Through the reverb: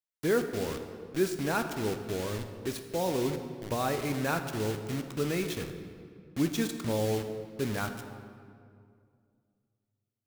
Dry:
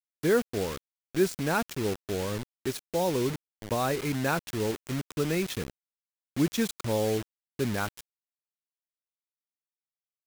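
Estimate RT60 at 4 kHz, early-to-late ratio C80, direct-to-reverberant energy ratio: 1.4 s, 9.0 dB, 6.0 dB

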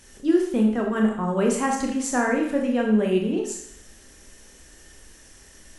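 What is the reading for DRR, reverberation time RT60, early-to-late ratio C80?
0.5 dB, 0.70 s, 8.0 dB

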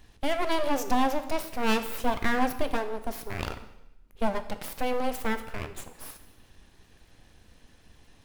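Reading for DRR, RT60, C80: 9.5 dB, 0.90 s, 14.5 dB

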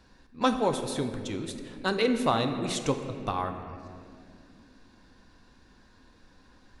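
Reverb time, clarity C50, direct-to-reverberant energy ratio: 2.5 s, 7.5 dB, 6.0 dB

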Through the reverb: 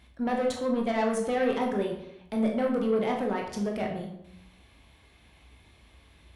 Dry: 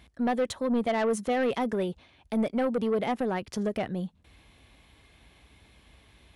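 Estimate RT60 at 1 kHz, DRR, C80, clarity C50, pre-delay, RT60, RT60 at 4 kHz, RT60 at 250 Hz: 0.75 s, 0.0 dB, 8.5 dB, 5.5 dB, 16 ms, 0.80 s, 0.55 s, 0.85 s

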